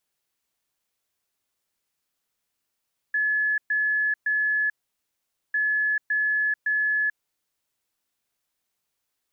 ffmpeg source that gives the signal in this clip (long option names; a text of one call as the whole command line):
ffmpeg -f lavfi -i "aevalsrc='0.0944*sin(2*PI*1710*t)*clip(min(mod(mod(t,2.4),0.56),0.44-mod(mod(t,2.4),0.56))/0.005,0,1)*lt(mod(t,2.4),1.68)':duration=4.8:sample_rate=44100" out.wav